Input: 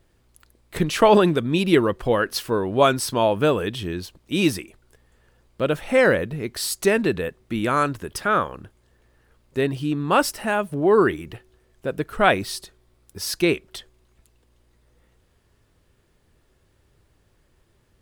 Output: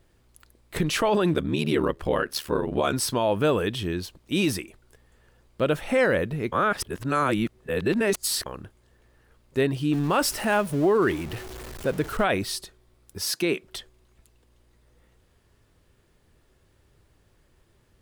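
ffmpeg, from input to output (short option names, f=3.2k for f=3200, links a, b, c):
-filter_complex "[0:a]asettb=1/sr,asplit=3[a][b][c];[a]atrim=end=1.334[d];[b]atrim=start=1.33:end=2.93,asetpts=PTS-STARTPTS,afade=t=in:d=0.004:c=qsin,afade=t=out:st=1.596:d=0.004:c=qsin,aeval=exprs='val(0)*sin(2*PI*37*n/s)':c=same[e];[c]atrim=start=2.926[f];[d][e]acrossfade=d=0.004:c1=hsin:c2=qsin[g];[g][f]acrossfade=d=0.004:c1=qsin:c2=hsin,asettb=1/sr,asplit=3[h][i][j];[h]atrim=end=9.934[k];[i]atrim=start=9.93:end=12.24,asetpts=PTS-STARTPTS,afade=t=in:d=0.004:c=qsin,afade=t=out:st=2.306:d=0.004:c=qsin,aeval=exprs='val(0)+0.5*0.0211*sgn(val(0))':c=same[l];[j]atrim=start=12.236[m];[k][l]acrossfade=d=0.004:c1=hsin:c2=qsin[n];[n][m]acrossfade=d=0.004:c1=qsin:c2=hsin,asettb=1/sr,asplit=3[o][p][q];[o]atrim=end=13.234[r];[p]atrim=start=13.23:end=13.63,asetpts=PTS-STARTPTS,afade=t=in:d=0.004:c=qsin,afade=t=out:st=0.396:d=0.004:c=qsin,highpass=f=150:w=0.5412,highpass=f=150:w=1.3066[s];[q]atrim=start=13.626[t];[r][s]acrossfade=d=0.004:c1=hsin:c2=qsin[u];[u][t]acrossfade=d=0.004:c1=qsin:c2=hsin,asplit=3[v][w][x];[v]atrim=end=6.522[y];[w]atrim=start=6.518:end=8.462,asetpts=PTS-STARTPTS,areverse[z];[x]atrim=start=8.458[aa];[y][z]acrossfade=d=0.004:c1=hsin:c2=hsin[ab];[ab][aa]acrossfade=d=0.004:c1=hsin:c2=hsin,alimiter=limit=-13.5dB:level=0:latency=1:release=35"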